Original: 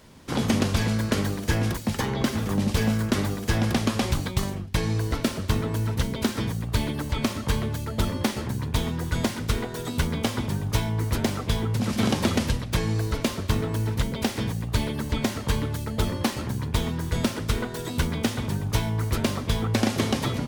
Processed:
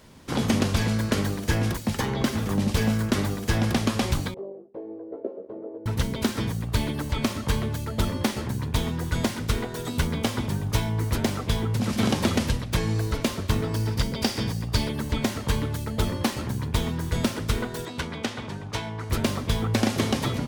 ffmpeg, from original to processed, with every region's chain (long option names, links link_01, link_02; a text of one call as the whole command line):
ffmpeg -i in.wav -filter_complex "[0:a]asettb=1/sr,asplit=3[link_01][link_02][link_03];[link_01]atrim=end=4.344[link_04];[link_02]atrim=start=4.34:end=5.86,asetpts=PTS-STARTPTS,afade=type=in:duration=0.004:curve=qsin,afade=type=out:start_time=1.516:duration=0.004:curve=qsin,asuperpass=centerf=460:order=4:qfactor=2,asplit=2[link_05][link_06];[link_06]adelay=15,volume=-2.5dB[link_07];[link_05][link_07]amix=inputs=2:normalize=0,atrim=end_sample=67032[link_08];[link_03]atrim=start=5.856[link_09];[link_04][link_08]acrossfade=duration=0.004:curve1=hsin:curve2=qsin[link_10];[link_10][link_09]acrossfade=duration=0.004:curve1=qsin:curve2=hsin,asettb=1/sr,asplit=3[link_11][link_12][link_13];[link_11]atrim=end=13.644[link_14];[link_12]atrim=start=13.64:end=14.89,asetpts=PTS-STARTPTS,afade=type=in:duration=0.004:curve=qsin,afade=type=out:start_time=1.246:duration=0.004:curve=qsin,equalizer=frequency=4700:width_type=o:width=0.39:gain=12,bandreject=frequency=4200:width=7.5[link_15];[link_13]atrim=start=14.886[link_16];[link_14][link_15]acrossfade=duration=0.004:curve1=hsin:curve2=qsin[link_17];[link_17][link_16]acrossfade=duration=0.004:curve1=qsin:curve2=hsin,asettb=1/sr,asplit=3[link_18][link_19][link_20];[link_18]atrim=end=17.854[link_21];[link_19]atrim=start=17.85:end=19.1,asetpts=PTS-STARTPTS,afade=type=in:duration=0.004:curve=qsin,afade=type=out:start_time=1.246:duration=0.004:curve=qsin,highpass=54,adynamicsmooth=sensitivity=3.5:basefreq=4800,lowshelf=frequency=290:gain=-10[link_22];[link_20]atrim=start=19.096[link_23];[link_21][link_22]acrossfade=duration=0.004:curve1=hsin:curve2=qsin[link_24];[link_24][link_23]acrossfade=duration=0.004:curve1=qsin:curve2=hsin" out.wav